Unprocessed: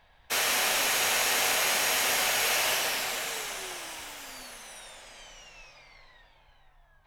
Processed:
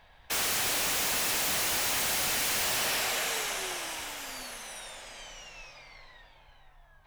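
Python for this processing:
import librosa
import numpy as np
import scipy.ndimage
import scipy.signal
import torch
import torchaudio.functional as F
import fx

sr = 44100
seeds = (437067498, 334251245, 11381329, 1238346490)

y = 10.0 ** (-27.5 / 20.0) * (np.abs((x / 10.0 ** (-27.5 / 20.0) + 3.0) % 4.0 - 2.0) - 1.0)
y = y * 10.0 ** (3.0 / 20.0)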